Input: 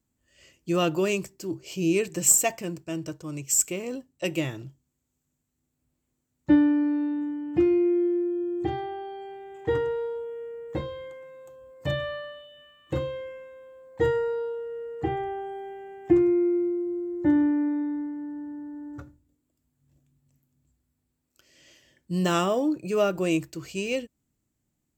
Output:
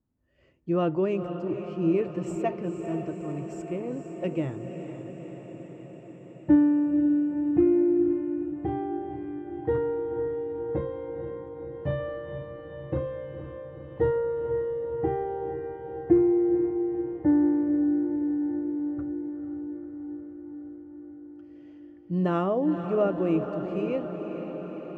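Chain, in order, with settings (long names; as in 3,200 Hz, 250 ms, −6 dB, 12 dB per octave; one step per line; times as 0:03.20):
Bessel low-pass filter 1,000 Hz, order 2
on a send: feedback delay with all-pass diffusion 487 ms, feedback 72%, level −8.5 dB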